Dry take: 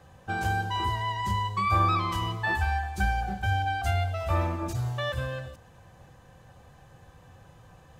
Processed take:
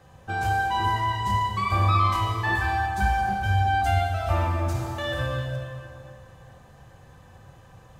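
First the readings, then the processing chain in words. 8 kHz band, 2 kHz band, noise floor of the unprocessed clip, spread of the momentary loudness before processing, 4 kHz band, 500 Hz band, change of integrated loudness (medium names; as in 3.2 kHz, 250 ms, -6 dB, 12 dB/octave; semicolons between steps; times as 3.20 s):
+2.0 dB, +3.5 dB, -54 dBFS, 7 LU, +2.0 dB, +3.0 dB, +3.5 dB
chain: plate-style reverb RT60 2.7 s, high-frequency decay 0.75×, DRR 0.5 dB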